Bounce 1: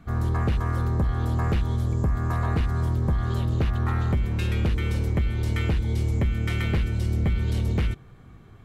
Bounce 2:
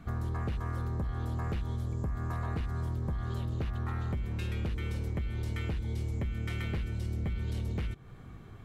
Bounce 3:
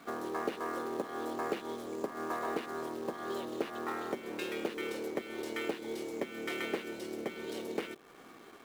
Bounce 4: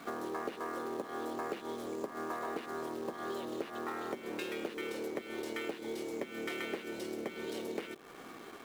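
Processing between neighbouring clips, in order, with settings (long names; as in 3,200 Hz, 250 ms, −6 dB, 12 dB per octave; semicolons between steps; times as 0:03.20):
downward compressor 4 to 1, threshold −33 dBFS, peak gain reduction 11 dB
high-pass filter 290 Hz 24 dB per octave; dynamic equaliser 440 Hz, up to +6 dB, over −55 dBFS, Q 0.91; in parallel at −6 dB: log-companded quantiser 4 bits
downward compressor 2.5 to 1, threshold −43 dBFS, peak gain reduction 10.5 dB; level +4.5 dB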